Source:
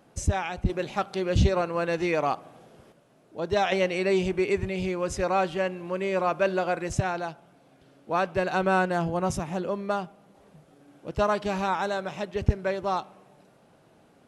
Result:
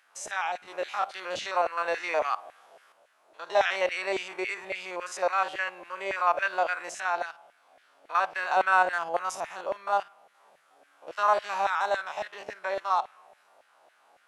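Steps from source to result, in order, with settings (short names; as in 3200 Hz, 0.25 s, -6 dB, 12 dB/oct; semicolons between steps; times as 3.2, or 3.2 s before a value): stepped spectrum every 50 ms; LFO high-pass saw down 3.6 Hz 620–1900 Hz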